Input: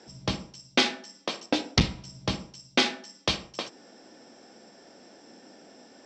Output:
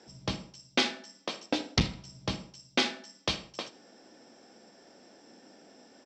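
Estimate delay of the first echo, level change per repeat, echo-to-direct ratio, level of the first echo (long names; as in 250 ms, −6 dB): 79 ms, −12.0 dB, −19.5 dB, −20.0 dB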